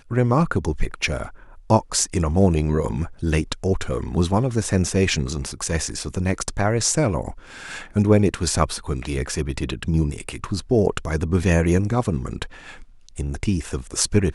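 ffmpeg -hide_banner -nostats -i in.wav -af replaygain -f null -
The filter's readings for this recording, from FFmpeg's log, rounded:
track_gain = +3.4 dB
track_peak = 0.622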